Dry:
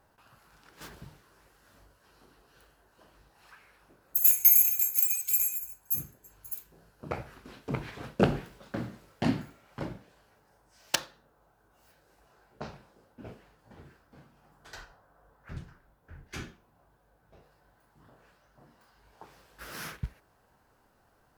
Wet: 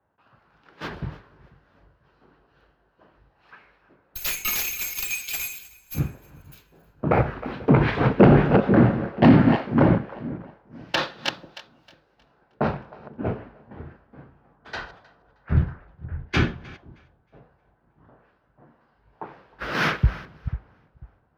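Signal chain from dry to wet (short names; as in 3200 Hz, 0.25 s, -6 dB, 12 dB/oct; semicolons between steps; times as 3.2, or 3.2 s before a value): reverse delay 0.247 s, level -14 dB; HPF 52 Hz; in parallel at -6.5 dB: soft clip -22 dBFS, distortion -8 dB; on the sum: added harmonics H 5 -10 dB, 8 -30 dB, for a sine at -5 dBFS; air absorption 300 m; split-band echo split 450 Hz, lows 0.491 s, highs 0.313 s, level -14 dB; maximiser +19 dB; three-band expander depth 100%; gain -13.5 dB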